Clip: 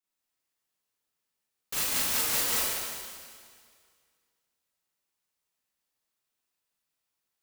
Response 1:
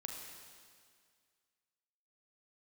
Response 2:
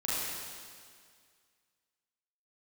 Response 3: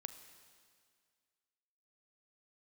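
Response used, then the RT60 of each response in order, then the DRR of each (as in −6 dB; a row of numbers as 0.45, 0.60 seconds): 2; 2.0, 2.0, 2.0 seconds; 0.5, −9.0, 9.0 decibels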